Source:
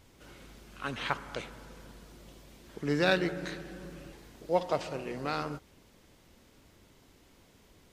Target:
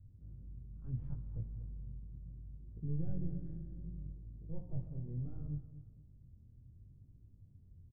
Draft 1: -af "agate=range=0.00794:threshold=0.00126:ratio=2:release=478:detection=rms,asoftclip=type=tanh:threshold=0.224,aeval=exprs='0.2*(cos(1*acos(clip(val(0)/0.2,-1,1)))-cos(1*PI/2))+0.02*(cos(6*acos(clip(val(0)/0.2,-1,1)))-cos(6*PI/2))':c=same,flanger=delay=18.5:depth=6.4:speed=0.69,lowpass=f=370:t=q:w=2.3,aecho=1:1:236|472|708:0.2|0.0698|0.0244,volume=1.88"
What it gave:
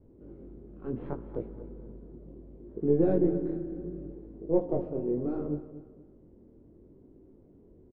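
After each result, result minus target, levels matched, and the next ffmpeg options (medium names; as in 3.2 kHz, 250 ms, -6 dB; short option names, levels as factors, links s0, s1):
500 Hz band +14.5 dB; saturation: distortion -13 dB
-af "agate=range=0.00794:threshold=0.00126:ratio=2:release=478:detection=rms,asoftclip=type=tanh:threshold=0.224,aeval=exprs='0.2*(cos(1*acos(clip(val(0)/0.2,-1,1)))-cos(1*PI/2))+0.02*(cos(6*acos(clip(val(0)/0.2,-1,1)))-cos(6*PI/2))':c=same,flanger=delay=18.5:depth=6.4:speed=0.69,lowpass=f=110:t=q:w=2.3,aecho=1:1:236|472|708:0.2|0.0698|0.0244,volume=1.88"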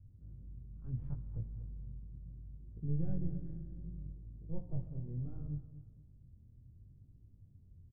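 saturation: distortion -13 dB
-af "agate=range=0.00794:threshold=0.00126:ratio=2:release=478:detection=rms,asoftclip=type=tanh:threshold=0.0631,aeval=exprs='0.2*(cos(1*acos(clip(val(0)/0.2,-1,1)))-cos(1*PI/2))+0.02*(cos(6*acos(clip(val(0)/0.2,-1,1)))-cos(6*PI/2))':c=same,flanger=delay=18.5:depth=6.4:speed=0.69,lowpass=f=110:t=q:w=2.3,aecho=1:1:236|472|708:0.2|0.0698|0.0244,volume=1.88"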